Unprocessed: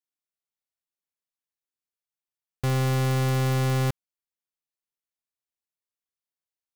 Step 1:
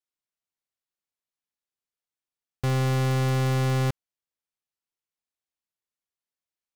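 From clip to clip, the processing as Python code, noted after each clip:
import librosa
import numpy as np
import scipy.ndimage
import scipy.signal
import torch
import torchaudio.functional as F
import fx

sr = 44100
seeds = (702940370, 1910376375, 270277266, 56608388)

y = fx.high_shelf(x, sr, hz=11000.0, db=-8.0)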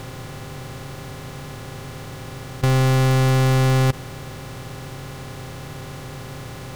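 y = fx.bin_compress(x, sr, power=0.2)
y = F.gain(torch.from_numpy(y), 6.5).numpy()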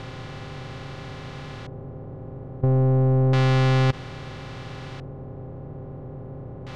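y = fx.filter_lfo_lowpass(x, sr, shape='square', hz=0.3, low_hz=560.0, high_hz=4000.0, q=1.0)
y = F.gain(torch.from_numpy(y), -2.0).numpy()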